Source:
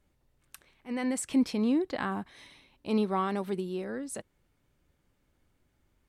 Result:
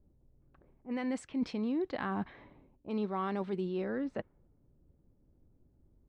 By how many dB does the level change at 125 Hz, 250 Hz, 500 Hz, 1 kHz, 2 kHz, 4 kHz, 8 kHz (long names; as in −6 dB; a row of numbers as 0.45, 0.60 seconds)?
−2.5 dB, −5.0 dB, −3.5 dB, −4.5 dB, −4.0 dB, −7.5 dB, below −15 dB